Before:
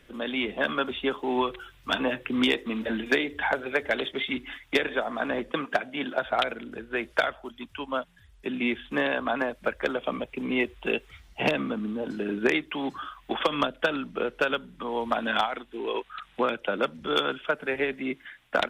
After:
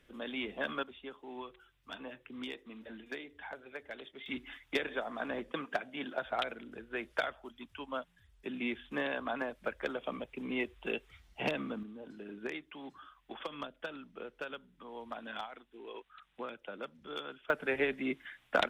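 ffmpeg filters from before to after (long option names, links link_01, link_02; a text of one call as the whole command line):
ffmpeg -i in.wav -af "asetnsamples=nb_out_samples=441:pad=0,asendcmd='0.83 volume volume -19dB;4.26 volume volume -9dB;11.83 volume volume -16.5dB;17.5 volume volume -4dB',volume=-9.5dB" out.wav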